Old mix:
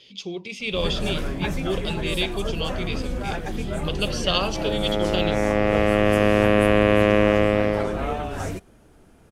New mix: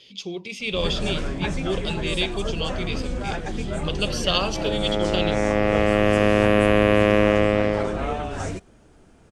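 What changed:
first sound: add Butterworth low-pass 8,900 Hz 36 dB per octave
master: add high-shelf EQ 6,700 Hz +4 dB

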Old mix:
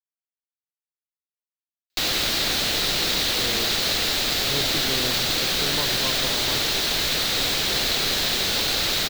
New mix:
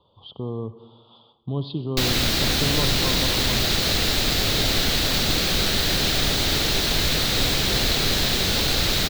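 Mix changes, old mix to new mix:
speech: entry −3.00 s
master: add low-shelf EQ 250 Hz +12 dB

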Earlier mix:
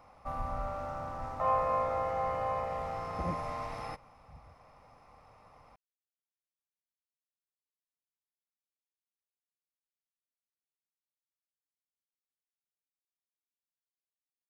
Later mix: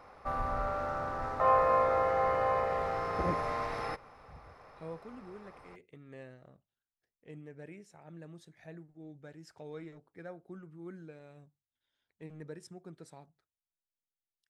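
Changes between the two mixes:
speech: unmuted
master: add graphic EQ with 15 bands 400 Hz +11 dB, 1,600 Hz +10 dB, 4,000 Hz +5 dB

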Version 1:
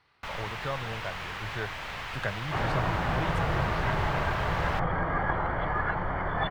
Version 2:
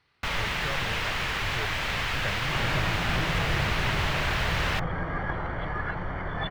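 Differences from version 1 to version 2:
first sound +10.5 dB
second sound: remove high-frequency loss of the air 89 metres
master: add parametric band 900 Hz −6 dB 1.6 octaves

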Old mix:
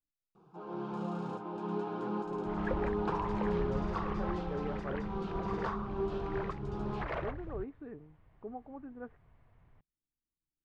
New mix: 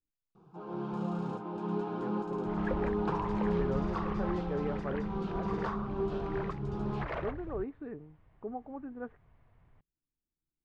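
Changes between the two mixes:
speech +4.0 dB
first sound: add low-shelf EQ 140 Hz +10 dB

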